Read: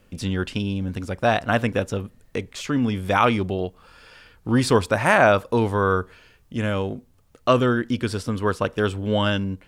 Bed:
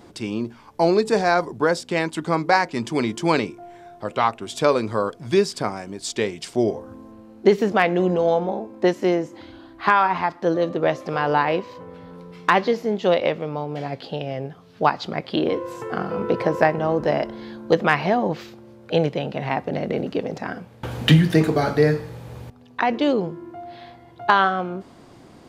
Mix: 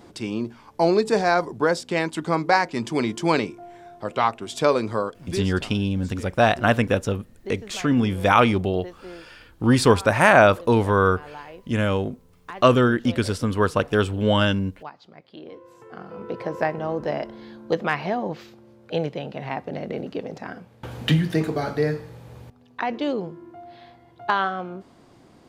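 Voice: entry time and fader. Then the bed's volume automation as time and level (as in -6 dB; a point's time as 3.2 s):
5.15 s, +2.0 dB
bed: 4.94 s -1 dB
5.83 s -20.5 dB
15.34 s -20.5 dB
16.71 s -5.5 dB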